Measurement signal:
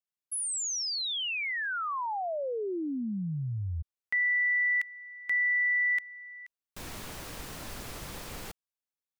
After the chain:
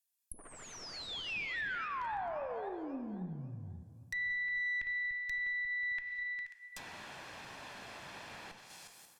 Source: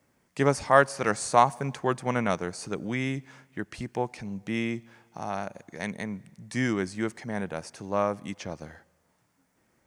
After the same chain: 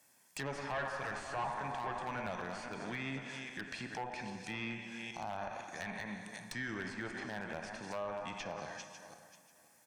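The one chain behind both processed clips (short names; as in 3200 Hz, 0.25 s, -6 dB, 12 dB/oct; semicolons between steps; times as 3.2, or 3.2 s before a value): regenerating reverse delay 0.269 s, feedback 43%, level -12 dB; HPF 84 Hz 24 dB/oct; RIAA curve recording; comb 1.2 ms, depth 39%; plate-style reverb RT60 2.1 s, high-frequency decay 0.7×, DRR 8 dB; tube stage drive 24 dB, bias 0.55; compressor 5:1, threshold -32 dBFS; treble ducked by the level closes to 2400 Hz, closed at -34.5 dBFS; wavefolder -27.5 dBFS; limiter -30.5 dBFS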